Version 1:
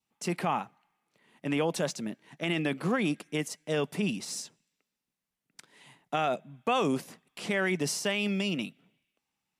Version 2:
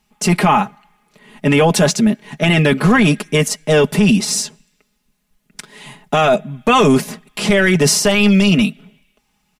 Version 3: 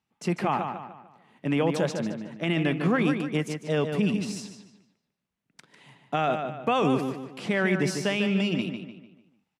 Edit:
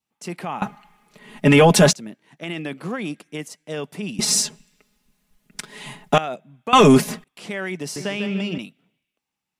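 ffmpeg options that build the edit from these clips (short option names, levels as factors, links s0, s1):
-filter_complex "[1:a]asplit=3[s0][s1][s2];[0:a]asplit=5[s3][s4][s5][s6][s7];[s3]atrim=end=0.622[s8];[s0]atrim=start=0.618:end=1.932[s9];[s4]atrim=start=1.928:end=4.192[s10];[s1]atrim=start=4.188:end=6.182[s11];[s5]atrim=start=6.178:end=6.732[s12];[s2]atrim=start=6.728:end=7.242[s13];[s6]atrim=start=7.238:end=7.962[s14];[2:a]atrim=start=7.958:end=8.582[s15];[s7]atrim=start=8.578[s16];[s8][s9]acrossfade=d=0.004:c1=hsin:c2=hsin[s17];[s17][s10]acrossfade=d=0.004:c1=hsin:c2=hsin[s18];[s18][s11]acrossfade=d=0.004:c1=hsin:c2=hsin[s19];[s19][s12]acrossfade=d=0.004:c1=hsin:c2=hsin[s20];[s20][s13]acrossfade=d=0.004:c1=hsin:c2=hsin[s21];[s21][s14]acrossfade=d=0.004:c1=hsin:c2=hsin[s22];[s22][s15]acrossfade=d=0.004:c1=hsin:c2=hsin[s23];[s23][s16]acrossfade=d=0.004:c1=hsin:c2=hsin"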